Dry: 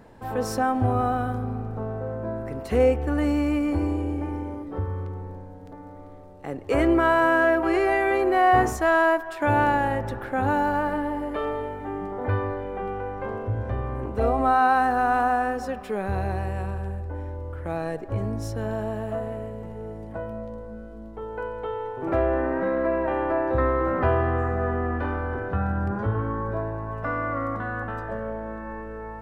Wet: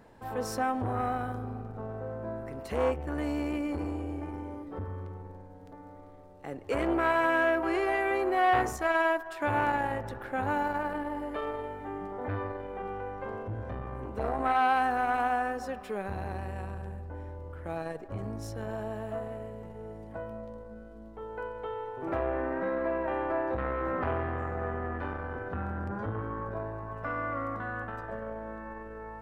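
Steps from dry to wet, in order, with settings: low shelf 460 Hz -3.5 dB; core saturation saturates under 740 Hz; gain -4 dB

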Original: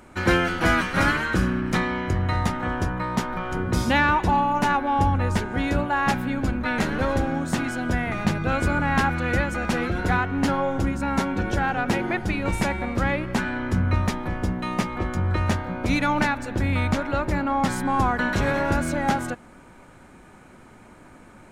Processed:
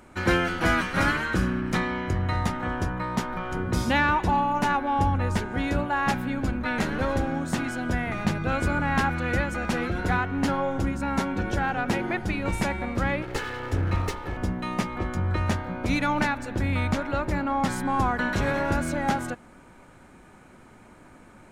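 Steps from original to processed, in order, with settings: 13.22–14.37 minimum comb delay 2.3 ms; gain -2.5 dB

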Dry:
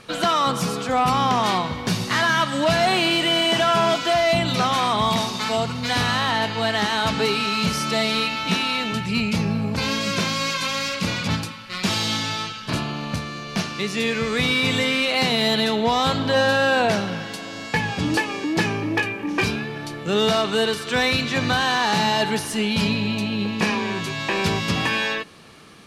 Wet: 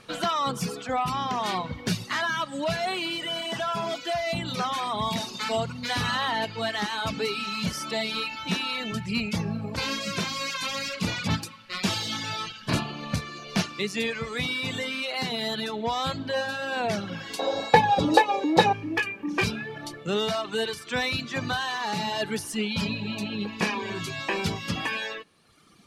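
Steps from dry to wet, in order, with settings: vocal rider within 5 dB 0.5 s; 17.39–18.73 small resonant body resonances 540/790/3800 Hz, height 18 dB, ringing for 30 ms; reverb removal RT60 1.4 s; 5.98–6.45 fast leveller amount 100%; gain -5 dB

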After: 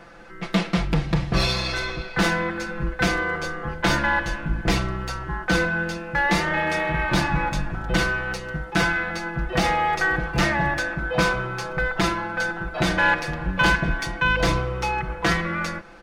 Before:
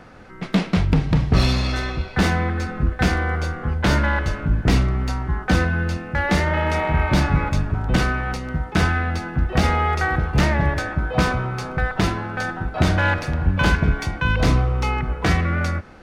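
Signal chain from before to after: bell 110 Hz -8 dB 2.9 oct; comb 5.9 ms, depth 79%; gain -1 dB

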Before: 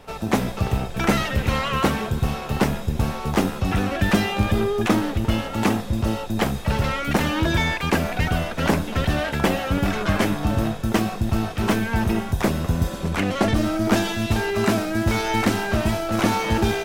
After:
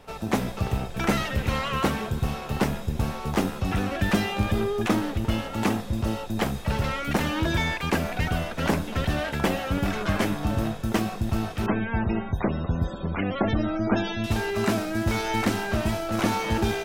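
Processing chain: 11.66–14.24 loudest bins only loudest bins 64; gain -4 dB

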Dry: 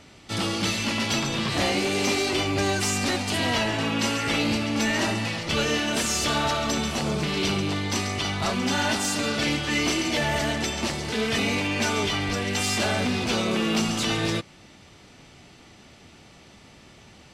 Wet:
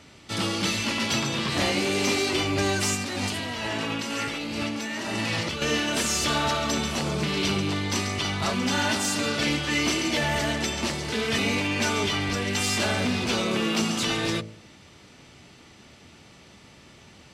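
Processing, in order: HPF 42 Hz; bell 740 Hz -3 dB 0.23 oct; de-hum 54.31 Hz, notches 15; 2.95–5.62 negative-ratio compressor -30 dBFS, ratio -1

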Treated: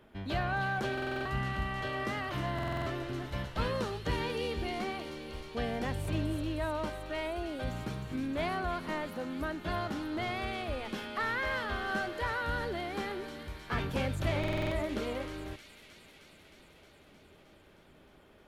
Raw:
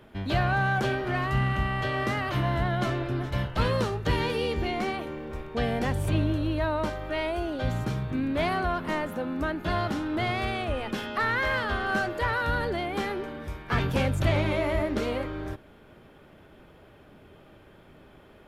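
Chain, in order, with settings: bell 120 Hz -5.5 dB 0.36 oct; thin delay 0.311 s, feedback 76%, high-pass 3500 Hz, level -5 dB; stuck buffer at 0.93/2.54/14.39, samples 2048, times 6; gain -6.5 dB

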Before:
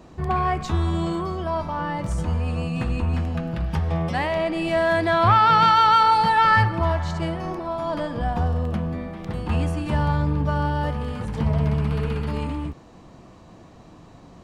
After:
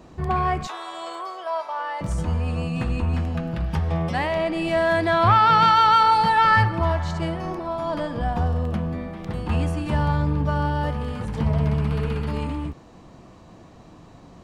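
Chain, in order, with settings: 0.67–2.01 HPF 540 Hz 24 dB/oct

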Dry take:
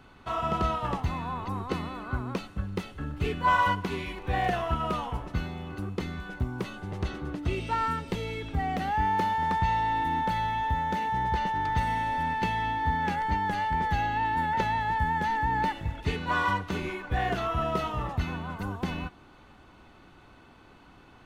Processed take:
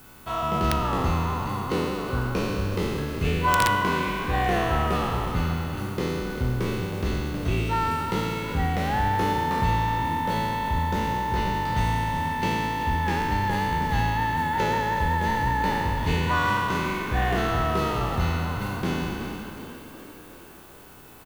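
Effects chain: spectral trails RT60 2.29 s; frequency-shifting echo 0.37 s, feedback 59%, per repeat +45 Hz, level -12 dB; wrapped overs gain 12 dB; added noise blue -57 dBFS; high shelf 6100 Hz +5 dB

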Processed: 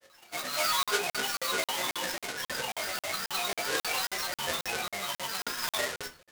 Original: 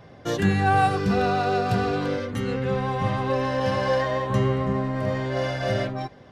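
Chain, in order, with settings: half-waves squared off; small resonant body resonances 870/2800 Hz, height 18 dB; AGC gain up to 3 dB; differentiator; notches 50/100/150/200 Hz; grains, pitch spread up and down by 12 st; high shelf 5900 Hz -7.5 dB; shoebox room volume 170 m³, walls furnished, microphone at 0.96 m; crackling interface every 0.27 s, samples 2048, zero, from 0.83

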